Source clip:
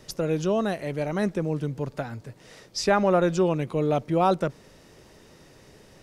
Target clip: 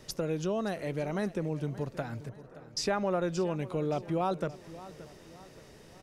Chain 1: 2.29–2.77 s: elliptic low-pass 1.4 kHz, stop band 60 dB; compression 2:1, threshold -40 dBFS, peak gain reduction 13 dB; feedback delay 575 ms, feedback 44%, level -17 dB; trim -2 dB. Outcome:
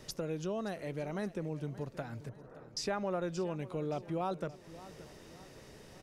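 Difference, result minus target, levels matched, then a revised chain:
compression: peak gain reduction +5 dB
2.29–2.77 s: elliptic low-pass 1.4 kHz, stop band 60 dB; compression 2:1, threshold -29.5 dBFS, peak gain reduction 8 dB; feedback delay 575 ms, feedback 44%, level -17 dB; trim -2 dB

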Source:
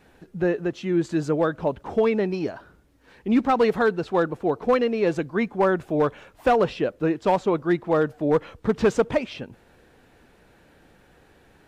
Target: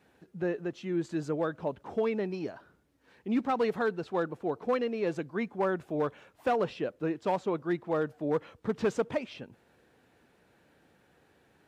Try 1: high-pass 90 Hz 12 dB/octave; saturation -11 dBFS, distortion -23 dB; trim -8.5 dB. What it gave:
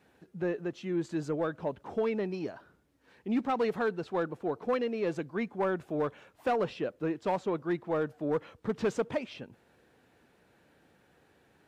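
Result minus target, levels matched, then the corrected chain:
saturation: distortion +15 dB
high-pass 90 Hz 12 dB/octave; saturation -2.5 dBFS, distortion -38 dB; trim -8.5 dB

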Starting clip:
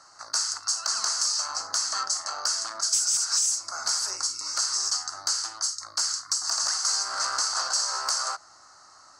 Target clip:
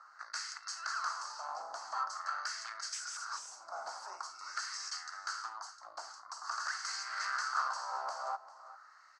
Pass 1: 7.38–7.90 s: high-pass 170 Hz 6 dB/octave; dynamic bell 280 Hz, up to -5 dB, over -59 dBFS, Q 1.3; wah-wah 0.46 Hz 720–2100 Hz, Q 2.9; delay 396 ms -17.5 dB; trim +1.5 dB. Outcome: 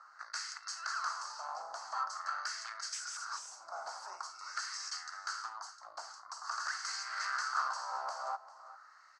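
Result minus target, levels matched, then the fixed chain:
250 Hz band -3.5 dB
7.38–7.90 s: high-pass 170 Hz 6 dB/octave; wah-wah 0.46 Hz 720–2100 Hz, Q 2.9; delay 396 ms -17.5 dB; trim +1.5 dB

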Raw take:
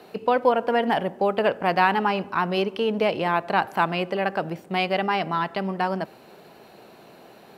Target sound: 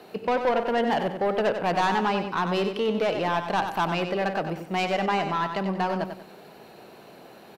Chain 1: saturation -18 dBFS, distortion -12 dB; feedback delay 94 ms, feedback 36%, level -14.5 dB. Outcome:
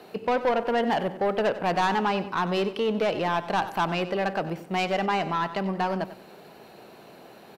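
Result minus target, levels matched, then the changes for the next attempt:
echo-to-direct -6.5 dB
change: feedback delay 94 ms, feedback 36%, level -8 dB

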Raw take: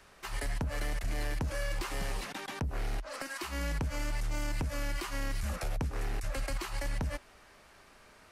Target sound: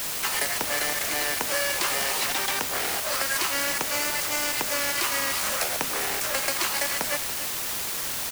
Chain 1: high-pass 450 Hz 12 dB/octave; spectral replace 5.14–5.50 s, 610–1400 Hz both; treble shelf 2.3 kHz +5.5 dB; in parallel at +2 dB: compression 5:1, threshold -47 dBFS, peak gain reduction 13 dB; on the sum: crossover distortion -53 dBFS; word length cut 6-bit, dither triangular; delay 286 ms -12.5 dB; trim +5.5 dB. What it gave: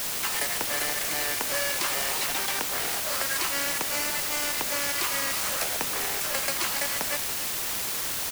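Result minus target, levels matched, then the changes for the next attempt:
crossover distortion: distortion +13 dB; compression: peak gain reduction +6.5 dB
change: compression 5:1, threshold -39 dBFS, peak gain reduction 6.5 dB; change: crossover distortion -64.5 dBFS

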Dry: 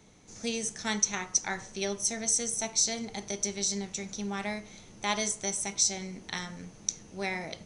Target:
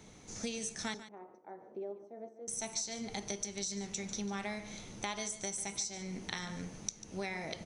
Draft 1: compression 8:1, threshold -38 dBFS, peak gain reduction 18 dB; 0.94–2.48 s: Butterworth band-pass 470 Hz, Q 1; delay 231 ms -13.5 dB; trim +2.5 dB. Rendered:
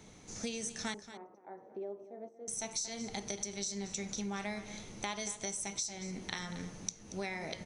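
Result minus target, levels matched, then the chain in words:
echo 86 ms late
compression 8:1, threshold -38 dBFS, peak gain reduction 18 dB; 0.94–2.48 s: Butterworth band-pass 470 Hz, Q 1; delay 145 ms -13.5 dB; trim +2.5 dB

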